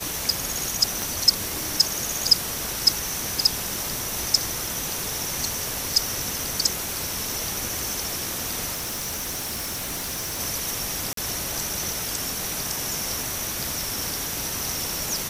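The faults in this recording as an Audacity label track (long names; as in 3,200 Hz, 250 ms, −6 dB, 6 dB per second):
1.020000	1.020000	click
8.730000	10.400000	clipping −26 dBFS
11.130000	11.170000	drop-out 43 ms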